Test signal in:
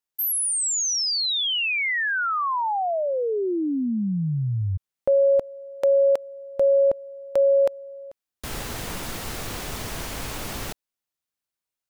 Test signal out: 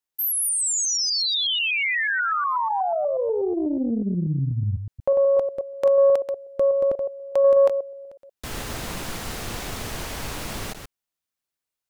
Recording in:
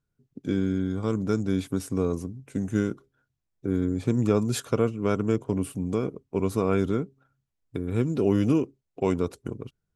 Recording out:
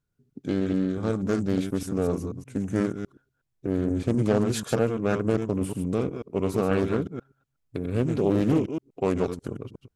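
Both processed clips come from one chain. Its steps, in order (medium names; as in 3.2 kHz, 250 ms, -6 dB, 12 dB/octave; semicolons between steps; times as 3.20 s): chunks repeated in reverse 122 ms, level -7 dB; loudspeaker Doppler distortion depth 0.44 ms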